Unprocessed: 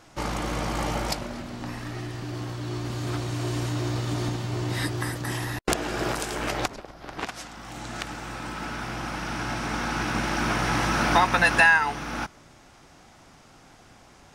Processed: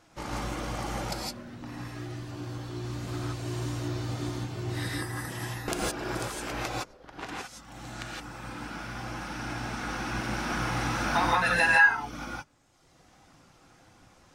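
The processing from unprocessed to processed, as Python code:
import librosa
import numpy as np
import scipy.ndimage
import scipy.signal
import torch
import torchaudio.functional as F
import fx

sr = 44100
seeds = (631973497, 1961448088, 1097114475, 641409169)

y = fx.dereverb_blind(x, sr, rt60_s=1.4)
y = fx.rev_gated(y, sr, seeds[0], gate_ms=190, shape='rising', drr_db=-4.0)
y = y * 10.0 ** (-8.0 / 20.0)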